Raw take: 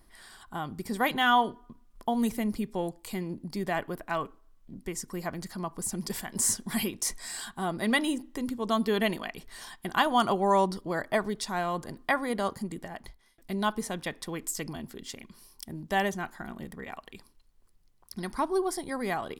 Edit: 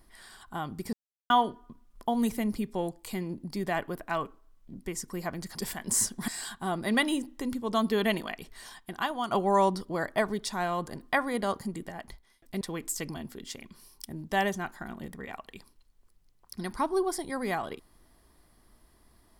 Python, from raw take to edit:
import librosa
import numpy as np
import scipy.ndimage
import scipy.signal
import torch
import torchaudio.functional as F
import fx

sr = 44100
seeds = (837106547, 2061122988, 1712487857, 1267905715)

y = fx.edit(x, sr, fx.silence(start_s=0.93, length_s=0.37),
    fx.cut(start_s=5.55, length_s=0.48),
    fx.cut(start_s=6.76, length_s=0.48),
    fx.fade_out_to(start_s=9.27, length_s=1.0, floor_db=-10.0),
    fx.cut(start_s=13.57, length_s=0.63), tone=tone)